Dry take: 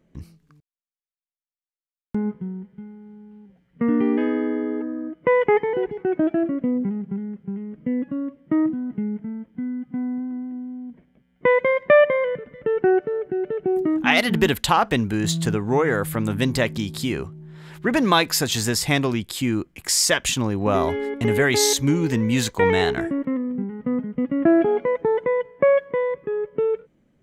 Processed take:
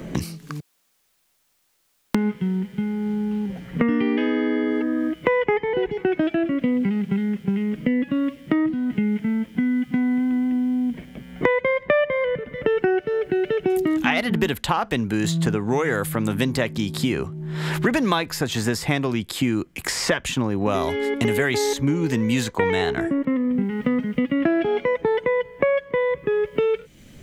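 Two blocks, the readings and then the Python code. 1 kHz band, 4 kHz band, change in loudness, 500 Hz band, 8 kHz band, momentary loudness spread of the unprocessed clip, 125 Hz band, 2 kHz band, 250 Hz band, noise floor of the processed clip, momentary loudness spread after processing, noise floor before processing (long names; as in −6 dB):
−2.5 dB, −4.0 dB, −1.0 dB, −1.5 dB, −7.5 dB, 12 LU, +0.5 dB, −0.5 dB, +1.5 dB, −67 dBFS, 5 LU, below −85 dBFS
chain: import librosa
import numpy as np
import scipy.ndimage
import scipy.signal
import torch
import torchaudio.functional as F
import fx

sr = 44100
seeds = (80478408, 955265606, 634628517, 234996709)

y = fx.band_squash(x, sr, depth_pct=100)
y = F.gain(torch.from_numpy(y), -1.0).numpy()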